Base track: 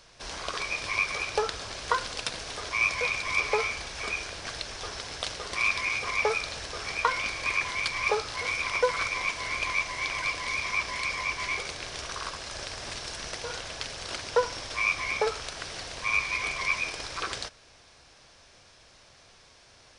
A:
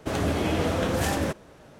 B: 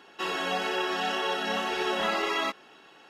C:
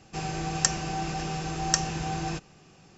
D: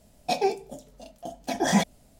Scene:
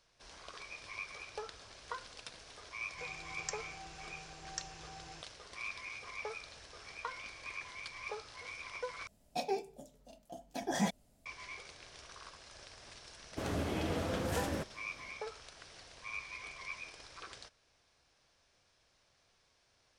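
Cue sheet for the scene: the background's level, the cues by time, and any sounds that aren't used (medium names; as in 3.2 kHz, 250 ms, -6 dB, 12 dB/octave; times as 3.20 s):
base track -16.5 dB
2.84 s: add C -17.5 dB + peaking EQ 220 Hz -11 dB 1.5 oct
9.07 s: replace with D -11 dB
13.31 s: add A -10.5 dB
not used: B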